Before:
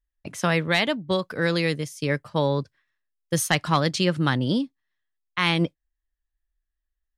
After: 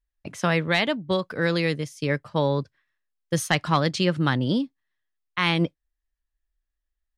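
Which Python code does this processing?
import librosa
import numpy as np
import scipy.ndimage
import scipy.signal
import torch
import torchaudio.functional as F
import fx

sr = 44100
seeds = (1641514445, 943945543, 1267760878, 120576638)

y = fx.high_shelf(x, sr, hz=8300.0, db=-9.5)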